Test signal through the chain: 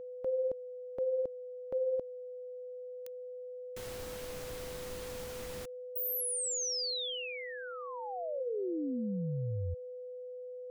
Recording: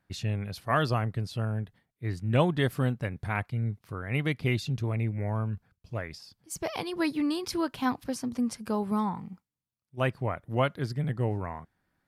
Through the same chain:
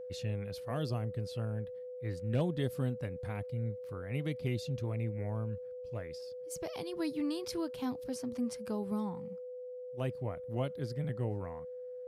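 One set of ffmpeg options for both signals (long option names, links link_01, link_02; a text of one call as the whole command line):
ffmpeg -i in.wav -filter_complex "[0:a]acrossover=split=660|3300[link_01][link_02][link_03];[link_02]acompressor=threshold=-43dB:ratio=6[link_04];[link_01][link_04][link_03]amix=inputs=3:normalize=0,aeval=exprs='val(0)+0.0178*sin(2*PI*500*n/s)':channel_layout=same,asoftclip=type=hard:threshold=-15dB,volume=-6.5dB" out.wav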